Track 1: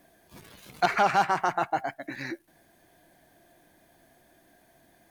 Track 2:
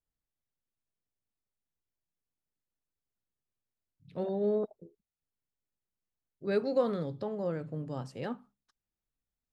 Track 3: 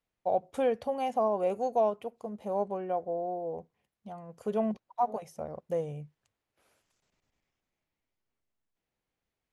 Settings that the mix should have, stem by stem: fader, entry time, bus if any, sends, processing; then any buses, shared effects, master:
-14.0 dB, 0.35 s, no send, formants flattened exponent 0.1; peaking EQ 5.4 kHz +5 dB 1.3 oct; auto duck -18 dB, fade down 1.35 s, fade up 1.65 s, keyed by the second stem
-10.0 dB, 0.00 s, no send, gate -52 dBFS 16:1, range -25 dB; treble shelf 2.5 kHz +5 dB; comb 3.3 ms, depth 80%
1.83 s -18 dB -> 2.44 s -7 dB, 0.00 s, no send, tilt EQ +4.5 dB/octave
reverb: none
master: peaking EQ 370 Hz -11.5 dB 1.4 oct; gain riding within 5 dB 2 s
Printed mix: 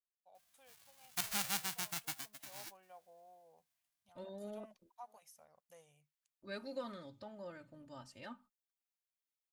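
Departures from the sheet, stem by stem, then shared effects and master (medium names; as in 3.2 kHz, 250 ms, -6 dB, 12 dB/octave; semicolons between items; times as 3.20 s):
stem 1: missing peaking EQ 5.4 kHz +5 dB 1.3 oct; stem 3 -18.0 dB -> -29.5 dB; master: missing gain riding within 5 dB 2 s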